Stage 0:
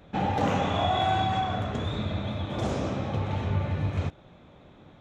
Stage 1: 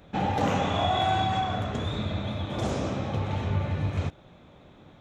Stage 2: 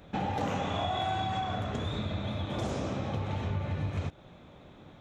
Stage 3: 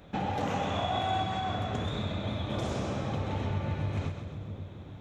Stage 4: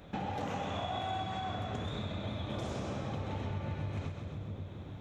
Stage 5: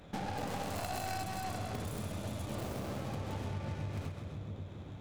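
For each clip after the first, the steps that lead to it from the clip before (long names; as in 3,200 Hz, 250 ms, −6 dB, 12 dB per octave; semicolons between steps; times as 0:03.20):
high-shelf EQ 5,200 Hz +4.5 dB
downward compressor 2.5 to 1, threshold −31 dBFS, peak gain reduction 7 dB
echo with a time of its own for lows and highs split 470 Hz, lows 539 ms, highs 131 ms, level −7 dB
downward compressor 2 to 1, threshold −38 dBFS, peak gain reduction 7 dB
stylus tracing distortion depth 0.42 ms; level −1.5 dB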